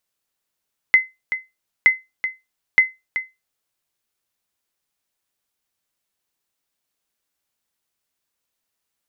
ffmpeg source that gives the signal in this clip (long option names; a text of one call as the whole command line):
ffmpeg -f lavfi -i "aevalsrc='0.631*(sin(2*PI*2050*mod(t,0.92))*exp(-6.91*mod(t,0.92)/0.21)+0.282*sin(2*PI*2050*max(mod(t,0.92)-0.38,0))*exp(-6.91*max(mod(t,0.92)-0.38,0)/0.21))':duration=2.76:sample_rate=44100" out.wav